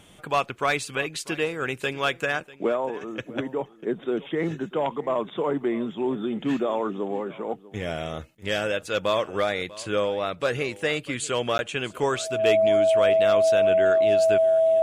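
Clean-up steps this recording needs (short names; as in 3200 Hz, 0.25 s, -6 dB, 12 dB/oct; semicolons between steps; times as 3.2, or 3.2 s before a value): notch 650 Hz, Q 30; interpolate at 11.58, 11 ms; inverse comb 0.644 s -19.5 dB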